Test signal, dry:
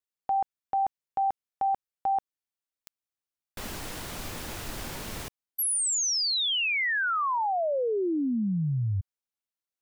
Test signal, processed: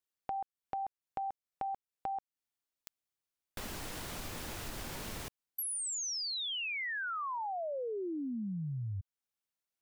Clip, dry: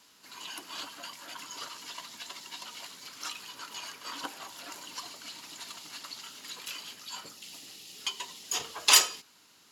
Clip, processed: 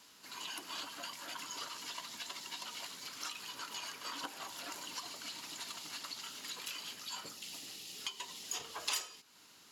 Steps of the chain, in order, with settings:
downward compressor 3 to 1, threshold −40 dBFS

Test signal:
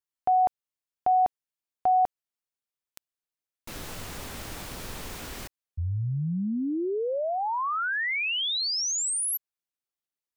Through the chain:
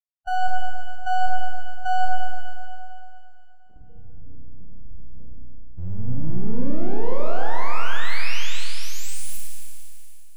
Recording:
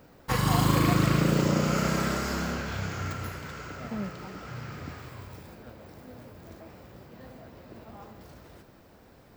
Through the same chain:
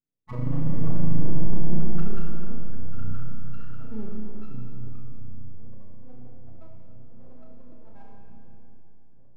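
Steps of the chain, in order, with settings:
noise gate with hold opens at −43 dBFS, hold 157 ms, range −33 dB
dynamic equaliser 4,800 Hz, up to −6 dB, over −49 dBFS, Q 1.5
spectral peaks only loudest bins 4
half-wave rectification
on a send: flutter between parallel walls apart 5.6 metres, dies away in 0.31 s
on the sum: four-comb reverb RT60 2.8 s, combs from 25 ms, DRR −0.5 dB

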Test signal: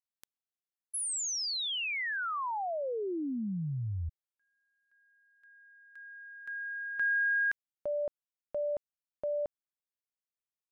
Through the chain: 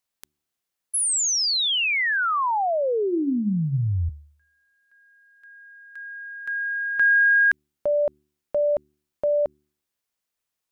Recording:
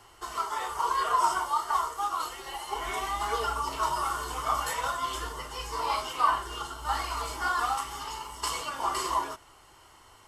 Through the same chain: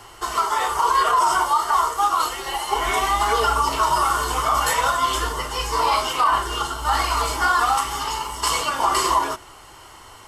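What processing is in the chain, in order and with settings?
hum removal 73.92 Hz, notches 5
boost into a limiter +20 dB
level −8.5 dB

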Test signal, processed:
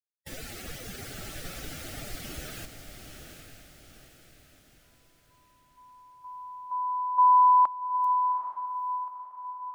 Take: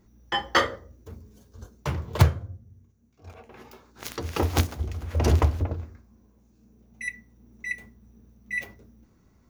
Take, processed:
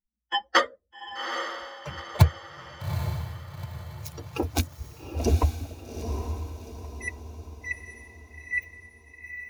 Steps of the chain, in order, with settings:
spectral dynamics exaggerated over time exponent 2
feedback delay with all-pass diffusion 820 ms, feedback 45%, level −7 dB
level +2.5 dB

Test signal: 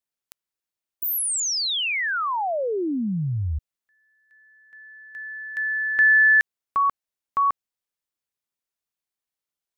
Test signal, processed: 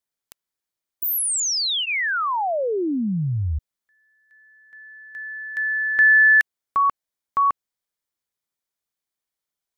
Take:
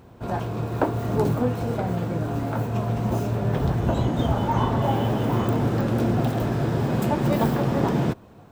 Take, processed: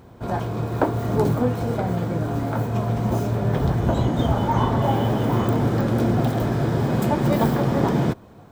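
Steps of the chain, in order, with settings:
notch filter 2,700 Hz, Q 12
level +2 dB

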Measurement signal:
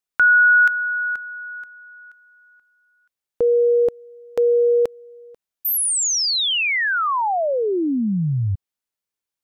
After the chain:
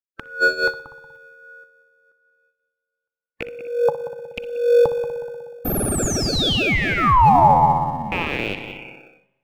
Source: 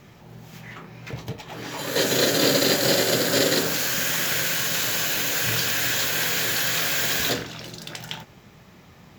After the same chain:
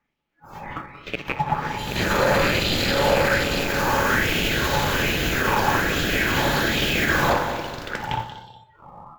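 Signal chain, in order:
loose part that buzzes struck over −30 dBFS, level −16 dBFS
hollow resonant body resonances 550/850 Hz, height 11 dB, ringing for 70 ms
auto-filter high-pass sine 1.2 Hz 840–2,900 Hz
parametric band 760 Hz +2.5 dB 2.5 octaves
on a send: echo machine with several playback heads 61 ms, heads first and third, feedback 66%, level −14 dB
on the sum: soft clipping −4 dBFS
noise reduction from a noise print of the clip's start 27 dB
in parallel at −9.5 dB: sample-rate reduction 1,000 Hz, jitter 0%
on the sum: brickwall limiter −12.5 dBFS
tilt shelving filter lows +8 dB, about 1,400 Hz
spring reverb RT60 1.3 s, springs 34/38 ms, chirp 55 ms, DRR 19 dB
auto-filter bell 0.53 Hz 890–3,900 Hz +6 dB

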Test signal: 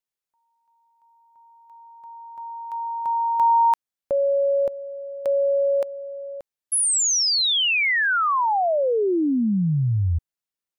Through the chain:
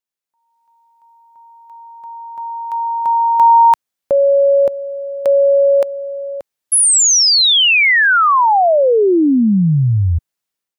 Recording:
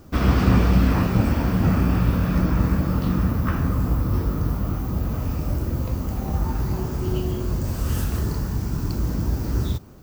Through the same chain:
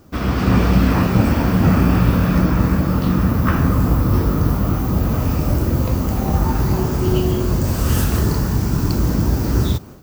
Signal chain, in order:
low-shelf EQ 67 Hz −7 dB
automatic gain control gain up to 9.5 dB

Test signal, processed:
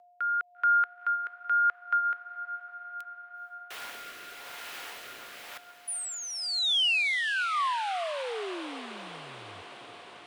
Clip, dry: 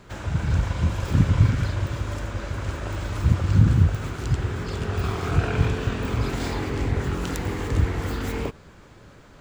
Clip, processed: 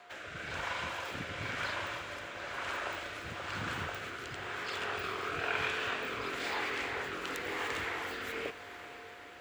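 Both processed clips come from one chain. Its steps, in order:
three-way crossover with the lows and the highs turned down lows −13 dB, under 350 Hz, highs −20 dB, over 3,100 Hz
steady tone 710 Hz −50 dBFS
rotating-speaker cabinet horn 1 Hz
spectral tilt +4.5 dB per octave
feedback delay with all-pass diffusion 466 ms, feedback 74%, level −14 dB

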